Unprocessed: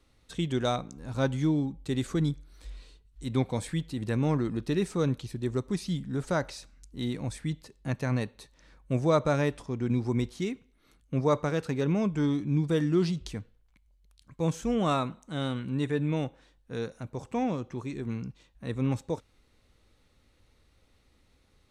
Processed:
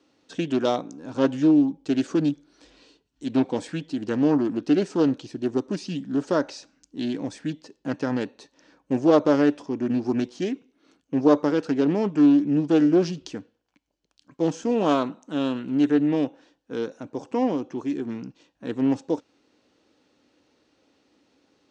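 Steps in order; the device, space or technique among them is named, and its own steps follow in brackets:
full-range speaker at full volume (highs frequency-modulated by the lows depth 0.39 ms; loudspeaker in its box 270–6,500 Hz, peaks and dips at 290 Hz +9 dB, 1,200 Hz −5 dB, 2,100 Hz −8 dB, 3,800 Hz −6 dB)
level +6 dB

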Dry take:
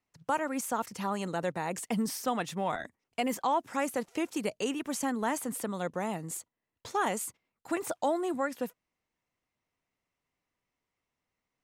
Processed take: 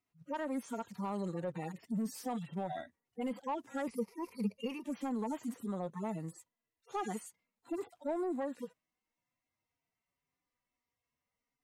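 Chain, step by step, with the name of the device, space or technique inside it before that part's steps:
harmonic-percussive split with one part muted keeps harmonic
soft clipper into limiter (soft clipping −24 dBFS, distortion −19 dB; brickwall limiter −29 dBFS, peak gain reduction 4.5 dB)
0:03.87–0:04.84: EQ curve with evenly spaced ripples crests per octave 0.86, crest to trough 15 dB
level −1 dB

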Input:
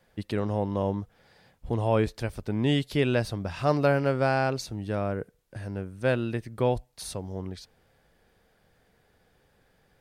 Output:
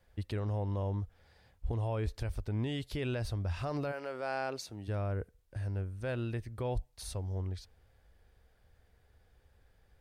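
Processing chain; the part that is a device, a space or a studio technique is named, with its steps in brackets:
car stereo with a boomy subwoofer (low shelf with overshoot 110 Hz +11.5 dB, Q 1.5; brickwall limiter −19 dBFS, peak gain reduction 8.5 dB)
0:03.91–0:04.87: high-pass filter 520 Hz → 170 Hz 12 dB per octave
level −6.5 dB

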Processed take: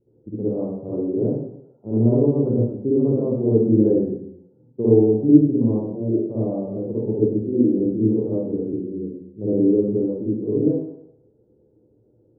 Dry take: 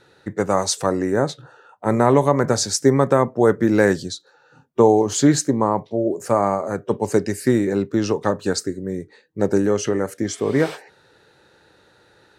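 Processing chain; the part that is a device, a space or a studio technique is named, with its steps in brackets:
0:07.35–0:07.79: high-pass filter 210 Hz 12 dB per octave
next room (low-pass filter 420 Hz 24 dB per octave; convolution reverb RT60 0.80 s, pre-delay 51 ms, DRR −10 dB)
level −8.5 dB

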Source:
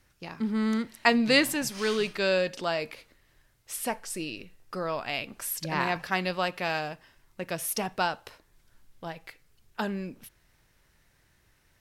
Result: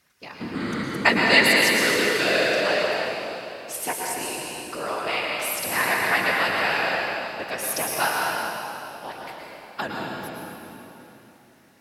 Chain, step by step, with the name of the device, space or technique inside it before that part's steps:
whispering ghost (random phases in short frames; high-pass filter 490 Hz 6 dB per octave; convolution reverb RT60 3.4 s, pre-delay 103 ms, DRR −2.5 dB)
dynamic equaliser 1,900 Hz, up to +5 dB, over −40 dBFS, Q 2.5
level +3 dB

